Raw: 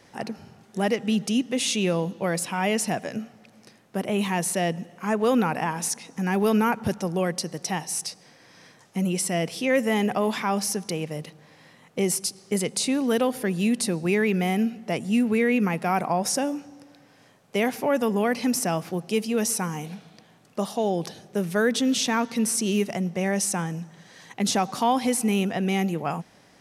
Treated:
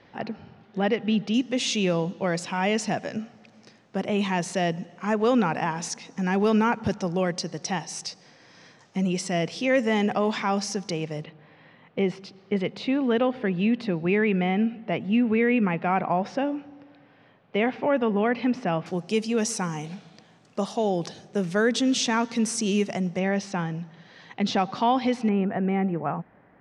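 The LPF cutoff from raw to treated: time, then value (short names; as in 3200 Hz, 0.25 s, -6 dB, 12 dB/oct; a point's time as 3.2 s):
LPF 24 dB/oct
4000 Hz
from 1.34 s 6600 Hz
from 11.24 s 3300 Hz
from 18.86 s 7700 Hz
from 23.19 s 4400 Hz
from 25.29 s 1900 Hz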